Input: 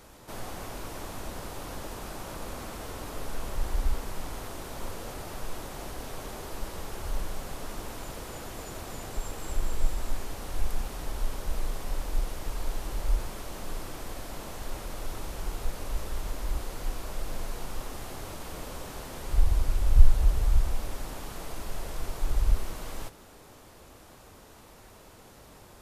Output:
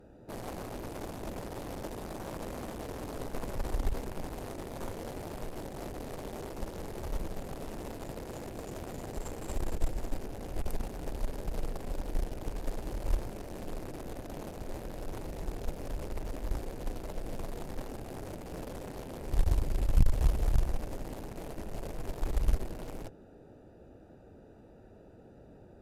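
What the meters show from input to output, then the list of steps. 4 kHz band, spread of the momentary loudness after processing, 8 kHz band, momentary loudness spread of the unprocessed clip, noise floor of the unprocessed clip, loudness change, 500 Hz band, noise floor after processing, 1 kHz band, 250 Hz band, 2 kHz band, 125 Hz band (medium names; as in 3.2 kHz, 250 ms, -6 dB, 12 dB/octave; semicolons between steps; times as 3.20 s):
-7.5 dB, 14 LU, -7.5 dB, 14 LU, -52 dBFS, -3.5 dB, +1.0 dB, -54 dBFS, -3.5 dB, +2.5 dB, -5.5 dB, -2.5 dB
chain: local Wiener filter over 41 samples; valve stage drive 16 dB, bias 0.75; bass shelf 85 Hz -9 dB; trim +8 dB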